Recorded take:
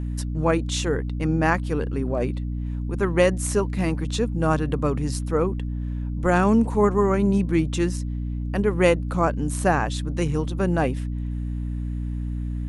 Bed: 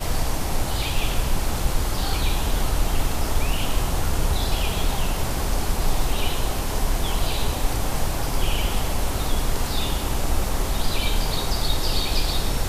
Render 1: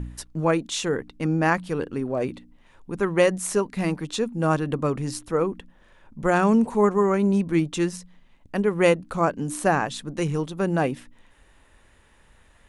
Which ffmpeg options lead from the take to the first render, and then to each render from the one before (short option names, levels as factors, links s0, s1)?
-af "bandreject=f=60:t=h:w=4,bandreject=f=120:t=h:w=4,bandreject=f=180:t=h:w=4,bandreject=f=240:t=h:w=4,bandreject=f=300:t=h:w=4"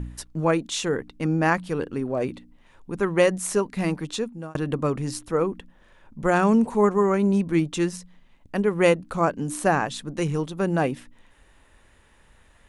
-filter_complex "[0:a]asplit=2[s0][s1];[s0]atrim=end=4.55,asetpts=PTS-STARTPTS,afade=t=out:st=4.1:d=0.45[s2];[s1]atrim=start=4.55,asetpts=PTS-STARTPTS,afade=t=in:d=0.004:c=hsin[s3];[s2][s3]concat=n=2:v=0:a=1"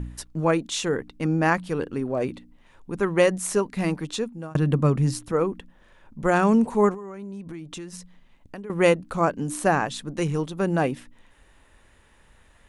-filter_complex "[0:a]asettb=1/sr,asplit=3[s0][s1][s2];[s0]atrim=end=4.514[s3];[s1]atrim=start=4.51:end=5.32,asetpts=PTS-STARTPTS,afade=t=in:d=0.004:c=qsin,afade=t=out:st=0.806:d=0.004:c=qsin,equalizer=f=150:w=1.5:g=9[s4];[s2]atrim=start=5.316[s5];[s3][s4]acrossfade=d=0.004:c1=hsin:c2=qsin[s6];[s6][s5]acrossfade=d=0.004:c1=qsin:c2=hsin,asettb=1/sr,asplit=3[s7][s8][s9];[s7]atrim=end=6.944[s10];[s8]atrim=start=6.94:end=8.7,asetpts=PTS-STARTPTS,afade=t=in:d=0.004:c=qsin,afade=t=out:st=1.756:d=0.004:c=qsin,acompressor=threshold=0.0224:ratio=12:attack=3.2:release=140:knee=1:detection=peak[s11];[s9]atrim=start=8.696[s12];[s10][s11]acrossfade=d=0.004:c1=hsin:c2=qsin[s13];[s13][s12]acrossfade=d=0.004:c1=qsin:c2=hsin"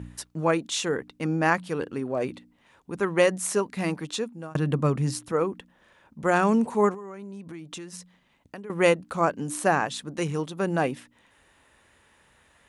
-af "highpass=75,lowshelf=f=390:g=-4.5"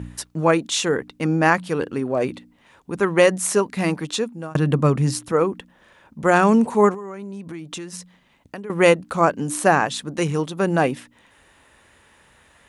-af "volume=2,alimiter=limit=0.708:level=0:latency=1"